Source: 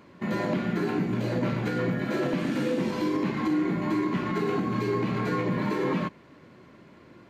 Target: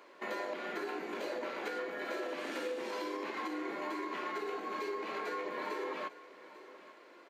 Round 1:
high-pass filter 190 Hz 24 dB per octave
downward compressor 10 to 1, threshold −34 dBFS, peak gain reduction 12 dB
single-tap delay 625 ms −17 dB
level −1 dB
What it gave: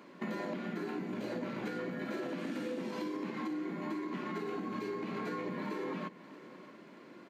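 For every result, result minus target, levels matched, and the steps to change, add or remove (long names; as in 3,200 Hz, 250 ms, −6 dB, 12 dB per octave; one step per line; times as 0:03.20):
250 Hz band +6.5 dB; echo 219 ms early
change: high-pass filter 400 Hz 24 dB per octave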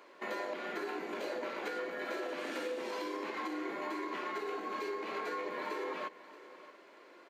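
echo 219 ms early
change: single-tap delay 844 ms −17 dB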